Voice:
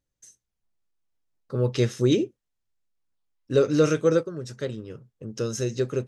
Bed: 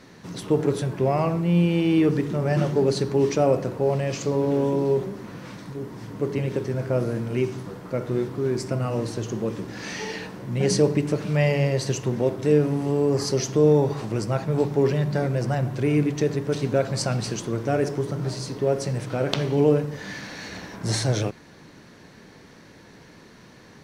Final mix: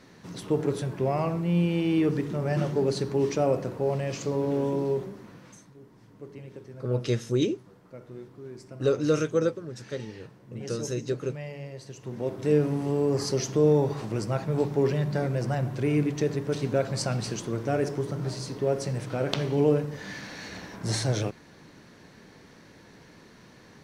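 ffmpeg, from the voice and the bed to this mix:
-filter_complex "[0:a]adelay=5300,volume=-4dB[a];[1:a]volume=9.5dB,afade=t=out:st=4.79:d=0.92:silence=0.223872,afade=t=in:st=11.96:d=0.58:silence=0.199526[b];[a][b]amix=inputs=2:normalize=0"

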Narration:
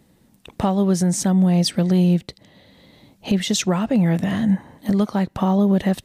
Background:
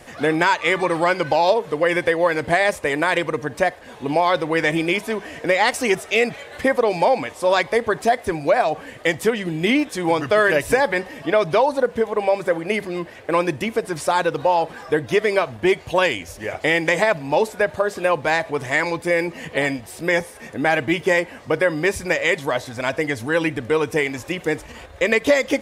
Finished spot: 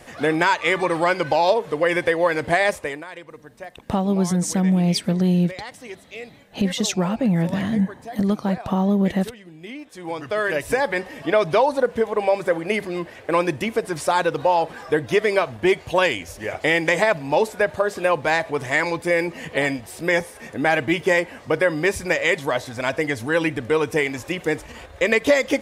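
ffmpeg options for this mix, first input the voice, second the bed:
-filter_complex "[0:a]adelay=3300,volume=-2dB[a];[1:a]volume=16.5dB,afade=t=out:st=2.7:d=0.34:silence=0.141254,afade=t=in:st=9.79:d=1.47:silence=0.133352[b];[a][b]amix=inputs=2:normalize=0"

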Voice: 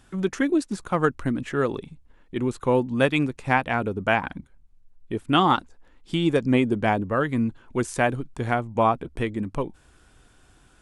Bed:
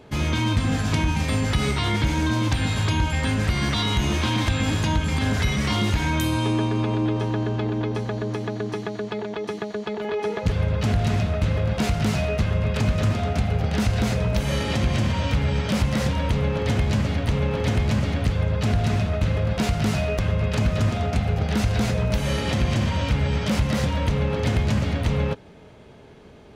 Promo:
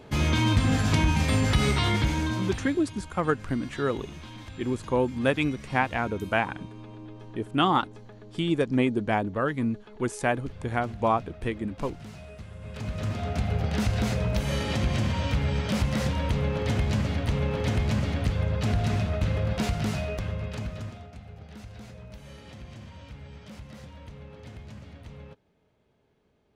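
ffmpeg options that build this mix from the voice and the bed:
-filter_complex "[0:a]adelay=2250,volume=-3.5dB[a];[1:a]volume=16dB,afade=t=out:st=1.78:d=1:silence=0.1,afade=t=in:st=12.59:d=0.93:silence=0.149624,afade=t=out:st=19.53:d=1.56:silence=0.125893[b];[a][b]amix=inputs=2:normalize=0"

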